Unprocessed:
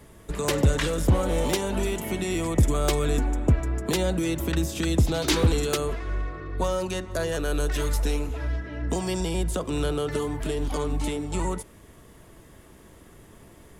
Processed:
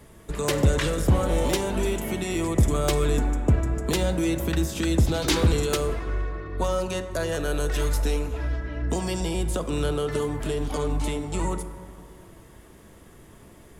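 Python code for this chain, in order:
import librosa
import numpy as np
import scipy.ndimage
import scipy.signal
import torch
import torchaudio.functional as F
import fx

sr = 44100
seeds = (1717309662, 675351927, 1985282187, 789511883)

y = fx.rev_plate(x, sr, seeds[0], rt60_s=2.4, hf_ratio=0.3, predelay_ms=0, drr_db=9.5)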